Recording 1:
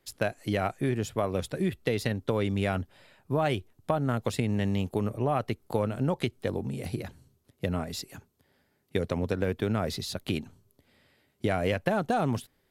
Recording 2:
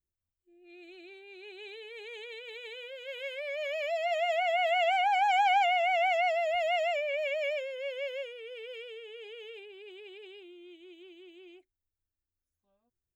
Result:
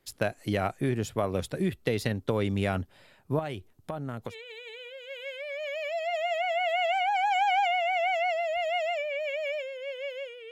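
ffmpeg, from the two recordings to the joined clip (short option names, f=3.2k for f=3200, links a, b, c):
-filter_complex "[0:a]asettb=1/sr,asplit=3[a][b][c];[a]atrim=end=3.394[d];[b]atrim=start=3.39:end=4.35,asetpts=PTS-STARTPTS,afade=t=in:d=0.004:c=qsin,afade=t=out:st=0.956:d=0.004:c=qsin,acompressor=threshold=-37dB:ratio=2:attack=3.2:release=140:knee=1:detection=peak[e];[c]atrim=start=4.346[f];[d][e]acrossfade=d=0.004:c1=hsin:c2=qsin[g];[g][f]acrossfade=d=0.004:c1=qsin:c2=hsin,apad=whole_dur=10.51,atrim=end=10.51,atrim=end=4.35,asetpts=PTS-STARTPTS[h];[1:a]atrim=start=2.25:end=8.49,asetpts=PTS-STARTPTS[i];[h][i]acrossfade=d=0.08:c1=tri:c2=tri"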